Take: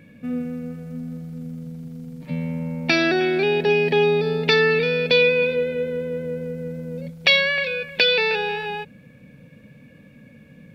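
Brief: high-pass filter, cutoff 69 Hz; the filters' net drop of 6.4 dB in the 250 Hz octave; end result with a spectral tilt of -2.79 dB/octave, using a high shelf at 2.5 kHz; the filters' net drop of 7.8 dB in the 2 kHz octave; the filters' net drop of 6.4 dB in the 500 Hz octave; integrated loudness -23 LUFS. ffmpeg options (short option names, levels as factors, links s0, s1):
-af "highpass=69,equalizer=f=250:t=o:g=-8,equalizer=f=500:t=o:g=-4.5,equalizer=f=2000:t=o:g=-6.5,highshelf=f=2500:g=-6,volume=1.58"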